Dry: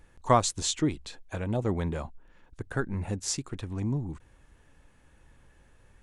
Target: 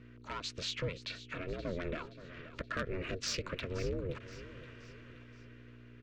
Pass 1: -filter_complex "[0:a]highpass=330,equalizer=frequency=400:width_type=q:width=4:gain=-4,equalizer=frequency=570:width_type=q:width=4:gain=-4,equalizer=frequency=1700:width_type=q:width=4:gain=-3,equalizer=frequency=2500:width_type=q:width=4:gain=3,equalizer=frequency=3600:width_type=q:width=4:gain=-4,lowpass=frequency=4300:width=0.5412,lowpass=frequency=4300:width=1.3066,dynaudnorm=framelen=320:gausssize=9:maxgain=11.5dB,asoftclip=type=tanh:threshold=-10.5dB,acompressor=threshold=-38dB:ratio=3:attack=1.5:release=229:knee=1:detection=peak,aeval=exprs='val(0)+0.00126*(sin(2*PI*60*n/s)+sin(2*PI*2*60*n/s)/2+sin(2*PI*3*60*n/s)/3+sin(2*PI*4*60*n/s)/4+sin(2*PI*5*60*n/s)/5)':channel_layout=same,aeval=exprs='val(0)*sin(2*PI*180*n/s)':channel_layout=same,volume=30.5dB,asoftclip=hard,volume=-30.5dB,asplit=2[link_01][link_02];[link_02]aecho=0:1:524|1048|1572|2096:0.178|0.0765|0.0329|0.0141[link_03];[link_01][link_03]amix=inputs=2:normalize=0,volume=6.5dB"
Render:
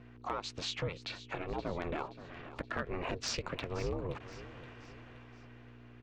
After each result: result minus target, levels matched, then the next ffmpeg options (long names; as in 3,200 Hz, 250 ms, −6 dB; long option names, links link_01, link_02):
soft clipping: distortion −11 dB; 1,000 Hz band +5.0 dB
-filter_complex "[0:a]highpass=330,equalizer=frequency=400:width_type=q:width=4:gain=-4,equalizer=frequency=570:width_type=q:width=4:gain=-4,equalizer=frequency=1700:width_type=q:width=4:gain=-3,equalizer=frequency=2500:width_type=q:width=4:gain=3,equalizer=frequency=3600:width_type=q:width=4:gain=-4,lowpass=frequency=4300:width=0.5412,lowpass=frequency=4300:width=1.3066,dynaudnorm=framelen=320:gausssize=9:maxgain=11.5dB,asoftclip=type=tanh:threshold=-20dB,acompressor=threshold=-38dB:ratio=3:attack=1.5:release=229:knee=1:detection=peak,aeval=exprs='val(0)+0.00126*(sin(2*PI*60*n/s)+sin(2*PI*2*60*n/s)/2+sin(2*PI*3*60*n/s)/3+sin(2*PI*4*60*n/s)/4+sin(2*PI*5*60*n/s)/5)':channel_layout=same,aeval=exprs='val(0)*sin(2*PI*180*n/s)':channel_layout=same,volume=30.5dB,asoftclip=hard,volume=-30.5dB,asplit=2[link_01][link_02];[link_02]aecho=0:1:524|1048|1572|2096:0.178|0.0765|0.0329|0.0141[link_03];[link_01][link_03]amix=inputs=2:normalize=0,volume=6.5dB"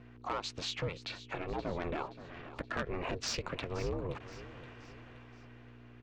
1,000 Hz band +5.0 dB
-filter_complex "[0:a]highpass=330,equalizer=frequency=400:width_type=q:width=4:gain=-4,equalizer=frequency=570:width_type=q:width=4:gain=-4,equalizer=frequency=1700:width_type=q:width=4:gain=-3,equalizer=frequency=2500:width_type=q:width=4:gain=3,equalizer=frequency=3600:width_type=q:width=4:gain=-4,lowpass=frequency=4300:width=0.5412,lowpass=frequency=4300:width=1.3066,dynaudnorm=framelen=320:gausssize=9:maxgain=11.5dB,asoftclip=type=tanh:threshold=-20dB,acompressor=threshold=-38dB:ratio=3:attack=1.5:release=229:knee=1:detection=peak,asuperstop=centerf=750:order=8:qfactor=1.1,aeval=exprs='val(0)+0.00126*(sin(2*PI*60*n/s)+sin(2*PI*2*60*n/s)/2+sin(2*PI*3*60*n/s)/3+sin(2*PI*4*60*n/s)/4+sin(2*PI*5*60*n/s)/5)':channel_layout=same,aeval=exprs='val(0)*sin(2*PI*180*n/s)':channel_layout=same,volume=30.5dB,asoftclip=hard,volume=-30.5dB,asplit=2[link_01][link_02];[link_02]aecho=0:1:524|1048|1572|2096:0.178|0.0765|0.0329|0.0141[link_03];[link_01][link_03]amix=inputs=2:normalize=0,volume=6.5dB"